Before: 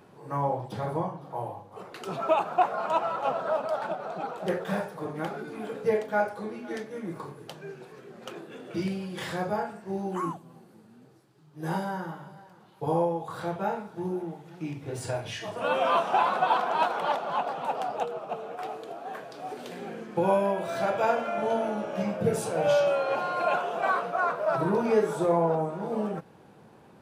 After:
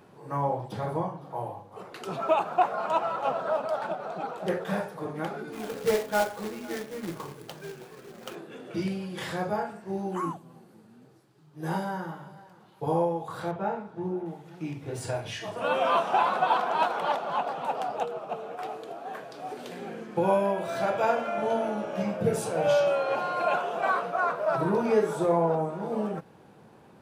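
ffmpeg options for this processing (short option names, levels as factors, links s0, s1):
-filter_complex "[0:a]asplit=3[s0][s1][s2];[s0]afade=t=out:st=5.52:d=0.02[s3];[s1]acrusher=bits=2:mode=log:mix=0:aa=0.000001,afade=t=in:st=5.52:d=0.02,afade=t=out:st=8.34:d=0.02[s4];[s2]afade=t=in:st=8.34:d=0.02[s5];[s3][s4][s5]amix=inputs=3:normalize=0,asettb=1/sr,asplit=3[s6][s7][s8];[s6]atrim=end=13.514[s9];[s7]atrim=start=13.51:end=14.26,asetpts=PTS-STARTPTS,afade=t=in:d=0.004:c=qsin,afade=t=out:st=0.746:d=0.004:c=qsin,lowpass=f=2000:p=1[s10];[s8]atrim=start=14.256[s11];[s9][s10]acrossfade=d=0.004:c1=hsin:c2=qsin[s12];[s12][s11]acrossfade=d=0.004:c1=qsin:c2=hsin"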